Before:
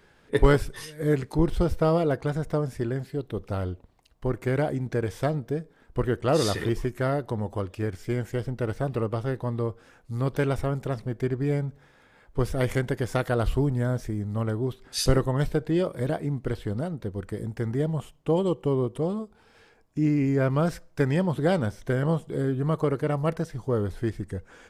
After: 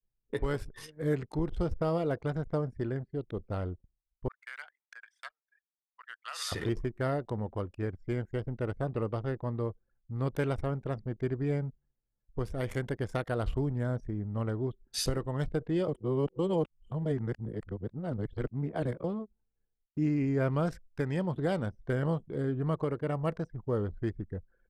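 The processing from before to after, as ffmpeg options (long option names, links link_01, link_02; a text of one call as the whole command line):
ffmpeg -i in.wav -filter_complex "[0:a]asettb=1/sr,asplit=3[link_01][link_02][link_03];[link_01]atrim=end=4.284[link_04];[link_02]atrim=start=4.28:end=6.52,asetpts=PTS-STARTPTS,afade=type=in:duration=0.004:curve=qsin,afade=type=out:start_time=2.236:duration=0.004:curve=qsin,highpass=frequency=1300:width=0.5412,highpass=frequency=1300:width=1.3066[link_05];[link_03]atrim=start=6.516[link_06];[link_04][link_05]acrossfade=duration=0.004:curve1=hsin:curve2=qsin[link_07];[link_07][link_06]acrossfade=duration=0.004:curve1=qsin:curve2=hsin,asplit=3[link_08][link_09][link_10];[link_08]atrim=end=15.882[link_11];[link_09]atrim=start=15.878:end=19.042,asetpts=PTS-STARTPTS,areverse[link_12];[link_10]atrim=start=19.038[link_13];[link_11][link_12]acrossfade=duration=0.004:curve1=hsin:curve2=hsin[link_14];[link_14][link_13]acrossfade=duration=0.004:curve1=hsin:curve2=hsin,agate=range=-33dB:threshold=-52dB:ratio=3:detection=peak,anlmdn=0.631,alimiter=limit=-15.5dB:level=0:latency=1:release=492,volume=-5dB" out.wav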